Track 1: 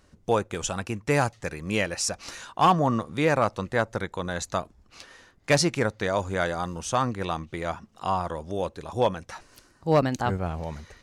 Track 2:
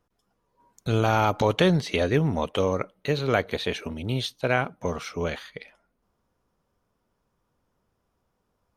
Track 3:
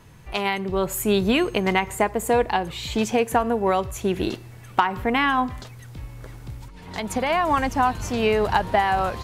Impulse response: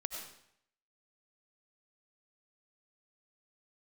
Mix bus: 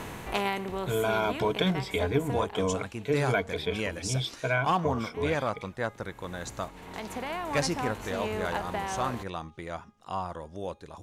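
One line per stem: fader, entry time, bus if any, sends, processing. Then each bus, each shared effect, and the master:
-7.0 dB, 2.05 s, no send, de-hum 411 Hz, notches 29
-7.5 dB, 0.00 s, no send, ripple EQ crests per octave 1.7, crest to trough 15 dB
2.26 s -3.5 dB -> 2.75 s -16 dB, 0.00 s, no send, per-bin compression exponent 0.6; auto duck -16 dB, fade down 1.20 s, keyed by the second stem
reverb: off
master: dry

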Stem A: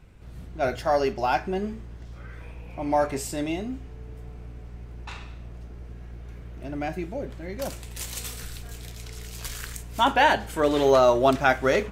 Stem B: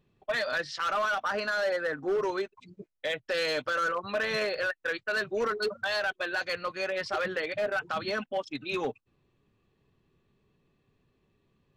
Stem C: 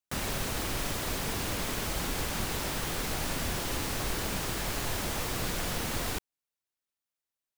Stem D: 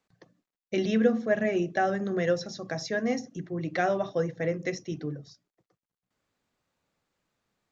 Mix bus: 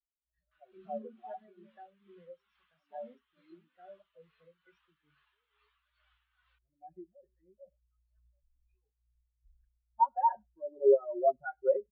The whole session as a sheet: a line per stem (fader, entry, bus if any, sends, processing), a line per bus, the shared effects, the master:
-8.5 dB, 0.00 s, no send, echo send -20 dB, spectral contrast raised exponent 1.6; LPF 2800 Hz; comb 5.5 ms, depth 90%; auto duck -6 dB, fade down 1.35 s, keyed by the fourth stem
-14.0 dB, 0.00 s, no send, no echo send, chorus voices 2, 0.27 Hz, delay 14 ms, depth 2.9 ms; LFO notch saw down 1.7 Hz 240–2400 Hz
+1.5 dB, 0.40 s, no send, no echo send, Chebyshev band-pass 1100–3400 Hz, order 2
-9.5 dB, 0.00 s, no send, no echo send, dry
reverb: off
echo: echo 0.101 s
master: high shelf 4500 Hz +8 dB; tremolo 2.3 Hz, depth 35%; spectral expander 2.5:1

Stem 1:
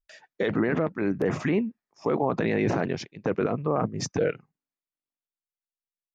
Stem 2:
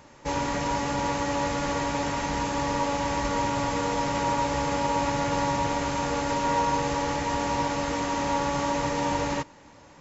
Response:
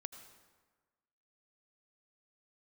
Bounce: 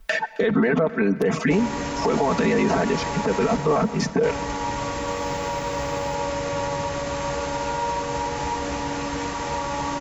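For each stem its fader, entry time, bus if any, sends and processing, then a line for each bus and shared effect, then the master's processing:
+2.0 dB, 0.00 s, send -3.5 dB, echo send -20 dB, reverb removal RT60 0.58 s; comb 4.5 ms, depth 93%; three-band squash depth 100%
-0.5 dB, 1.25 s, muted 3.57–4.23, no send, echo send -4 dB, limiter -18.5 dBFS, peak gain reduction 5 dB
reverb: on, RT60 1.4 s, pre-delay 72 ms
echo: feedback echo 0.267 s, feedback 57%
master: limiter -11.5 dBFS, peak gain reduction 10 dB

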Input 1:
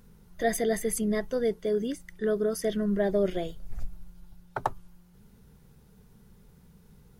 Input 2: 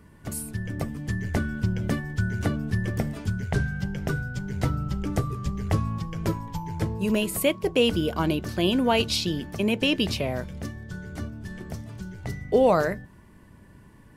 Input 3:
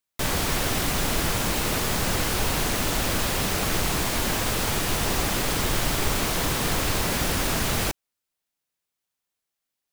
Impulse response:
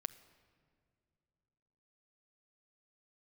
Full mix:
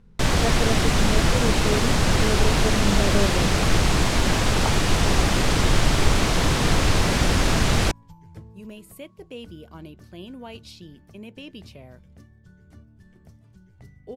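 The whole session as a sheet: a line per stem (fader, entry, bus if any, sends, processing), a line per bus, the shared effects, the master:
-2.0 dB, 0.00 s, no send, LPF 3700 Hz
-18.5 dB, 1.55 s, no send, dry
+3.0 dB, 0.00 s, no send, LPF 7300 Hz 12 dB/oct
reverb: off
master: low shelf 200 Hz +6 dB

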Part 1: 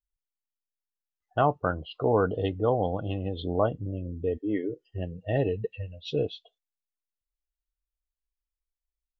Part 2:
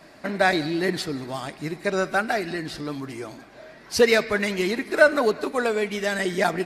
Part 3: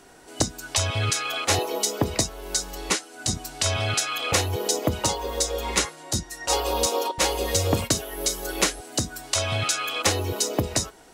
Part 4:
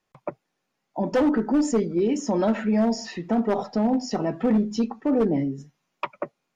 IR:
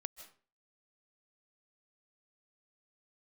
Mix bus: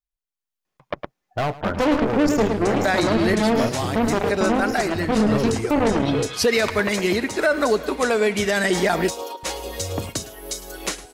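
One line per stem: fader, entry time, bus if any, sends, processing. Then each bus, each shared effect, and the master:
-3.0 dB, 0.00 s, no send, echo send -17 dB, hard clip -24 dBFS, distortion -8 dB
-3.0 dB, 2.45 s, no send, no echo send, short-mantissa float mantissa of 8-bit
-16.0 dB, 2.25 s, no send, echo send -17 dB, dry
0.0 dB, 0.65 s, no send, echo send -9 dB, added harmonics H 2 -8 dB, 3 -13 dB, 7 -36 dB, 8 -21 dB, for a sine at -13.5 dBFS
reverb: off
echo: echo 0.108 s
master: AGC gain up to 11 dB; limiter -9.5 dBFS, peak gain reduction 8.5 dB

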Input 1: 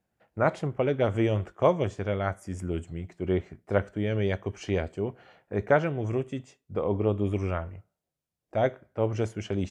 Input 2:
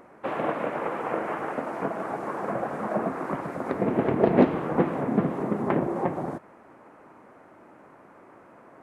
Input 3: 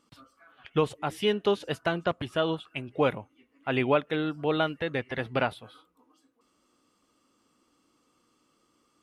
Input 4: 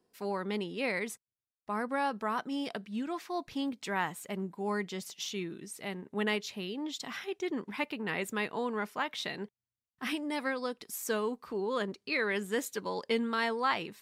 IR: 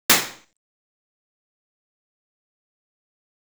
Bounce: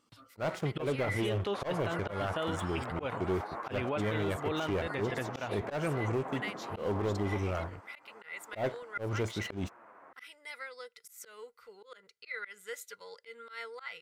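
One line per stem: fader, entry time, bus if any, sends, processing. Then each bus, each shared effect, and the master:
-10.0 dB, 0.00 s, no send, sample leveller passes 3
-10.0 dB, 1.30 s, no send, bell 1200 Hz +13.5 dB 2.7 oct; compressor 6:1, threshold -22 dBFS, peak gain reduction 15 dB; flange 1.3 Hz, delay 8.4 ms, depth 3.3 ms, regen +36%
-3.0 dB, 0.00 s, no send, bell 110 Hz +9 dB 0.27 oct
-6.0 dB, 0.15 s, no send, passive tone stack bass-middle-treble 10-0-10; small resonant body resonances 470/1400/2000 Hz, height 18 dB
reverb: off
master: low shelf 360 Hz -3.5 dB; auto swell 0.154 s; limiter -24 dBFS, peak gain reduction 8.5 dB

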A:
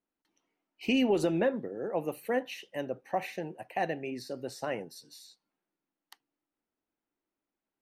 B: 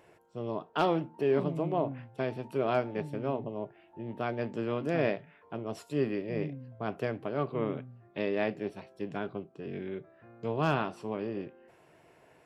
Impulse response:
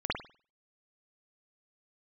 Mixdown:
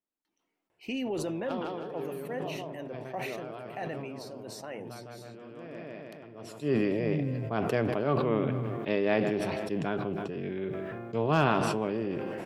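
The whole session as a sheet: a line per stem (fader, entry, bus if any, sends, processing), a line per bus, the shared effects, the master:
-7.5 dB, 0.00 s, no send, no echo send, dry
+3.0 dB, 0.70 s, no send, echo send -19.5 dB, auto duck -21 dB, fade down 0.65 s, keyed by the first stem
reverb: off
echo: feedback echo 0.158 s, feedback 56%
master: sustainer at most 20 dB/s

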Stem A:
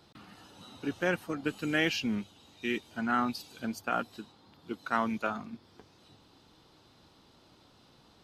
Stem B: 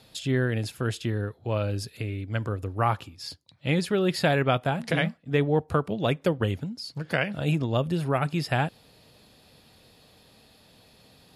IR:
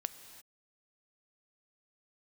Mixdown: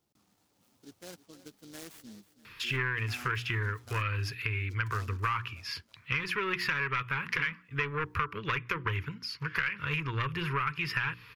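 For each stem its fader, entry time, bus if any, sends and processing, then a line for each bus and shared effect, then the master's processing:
-18.0 dB, 0.00 s, no send, echo send -15.5 dB, notch 2500 Hz, Q 8.1; noise-modulated delay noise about 4400 Hz, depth 0.14 ms
+2.0 dB, 2.45 s, no send, no echo send, notches 60/120/180/240/300/360 Hz; soft clip -22.5 dBFS, distortion -11 dB; EQ curve 120 Hz 0 dB, 230 Hz -15 dB, 430 Hz -3 dB, 710 Hz -27 dB, 1000 Hz +9 dB, 2500 Hz +13 dB, 3800 Hz -4 dB, 5700 Hz -1 dB, 8400 Hz -16 dB, 13000 Hz 0 dB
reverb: off
echo: feedback echo 0.323 s, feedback 43%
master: compressor 6:1, threshold -28 dBFS, peak gain reduction 12.5 dB

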